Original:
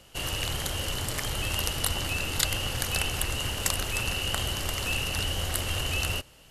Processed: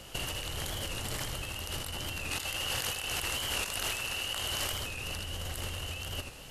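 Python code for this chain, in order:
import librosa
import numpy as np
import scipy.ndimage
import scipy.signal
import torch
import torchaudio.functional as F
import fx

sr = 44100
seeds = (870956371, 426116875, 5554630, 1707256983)

y = fx.low_shelf(x, sr, hz=340.0, db=-11.5, at=(2.3, 4.73))
y = fx.over_compress(y, sr, threshold_db=-37.0, ratio=-1.0)
y = y + 10.0 ** (-8.0 / 20.0) * np.pad(y, (int(81 * sr / 1000.0), 0))[:len(y)]
y = fx.record_warp(y, sr, rpm=45.0, depth_cents=100.0)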